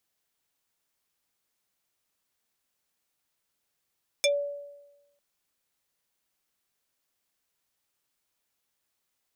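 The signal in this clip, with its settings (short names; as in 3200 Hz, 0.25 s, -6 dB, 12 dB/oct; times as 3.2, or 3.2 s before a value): FM tone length 0.95 s, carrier 573 Hz, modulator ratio 5.13, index 3.2, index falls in 0.11 s exponential, decay 1.07 s, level -18.5 dB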